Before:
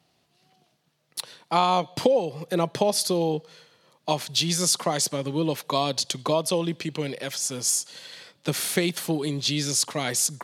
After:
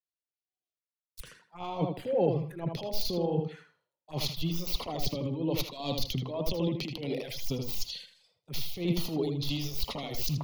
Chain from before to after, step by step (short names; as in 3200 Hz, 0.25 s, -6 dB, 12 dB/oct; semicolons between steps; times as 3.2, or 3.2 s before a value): tracing distortion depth 0.18 ms; transient shaper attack -9 dB, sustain +9 dB; low shelf 89 Hz +12 dB; reverse; compressor 10:1, threshold -26 dBFS, peak gain reduction 12.5 dB; reverse; reverb removal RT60 1.5 s; envelope phaser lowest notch 170 Hz, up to 1600 Hz, full sweep at -30 dBFS; on a send: tape echo 79 ms, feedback 38%, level -3 dB, low-pass 3400 Hz; on the sum: three-band expander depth 100%